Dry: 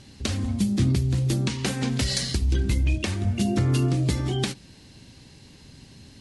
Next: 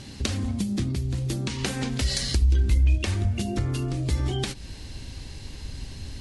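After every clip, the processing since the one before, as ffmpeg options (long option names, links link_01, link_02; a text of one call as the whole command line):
ffmpeg -i in.wav -af "acompressor=threshold=-31dB:ratio=6,asubboost=boost=8.5:cutoff=57,volume=7dB" out.wav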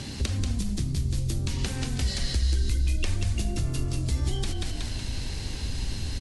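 ffmpeg -i in.wav -filter_complex "[0:a]asplit=6[link_01][link_02][link_03][link_04][link_05][link_06];[link_02]adelay=185,afreqshift=-44,volume=-5dB[link_07];[link_03]adelay=370,afreqshift=-88,volume=-12.7dB[link_08];[link_04]adelay=555,afreqshift=-132,volume=-20.5dB[link_09];[link_05]adelay=740,afreqshift=-176,volume=-28.2dB[link_10];[link_06]adelay=925,afreqshift=-220,volume=-36dB[link_11];[link_01][link_07][link_08][link_09][link_10][link_11]amix=inputs=6:normalize=0,acrossover=split=92|4000[link_12][link_13][link_14];[link_12]acompressor=threshold=-31dB:ratio=4[link_15];[link_13]acompressor=threshold=-41dB:ratio=4[link_16];[link_14]acompressor=threshold=-45dB:ratio=4[link_17];[link_15][link_16][link_17]amix=inputs=3:normalize=0,volume=6dB" out.wav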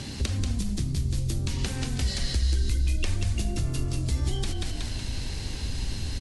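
ffmpeg -i in.wav -af anull out.wav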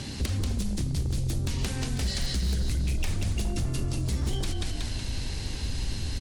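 ffmpeg -i in.wav -af "aeval=exprs='0.0841*(abs(mod(val(0)/0.0841+3,4)-2)-1)':channel_layout=same" out.wav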